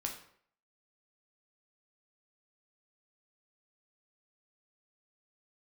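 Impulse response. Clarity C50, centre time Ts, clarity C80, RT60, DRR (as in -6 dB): 7.5 dB, 22 ms, 11.0 dB, 0.60 s, 1.0 dB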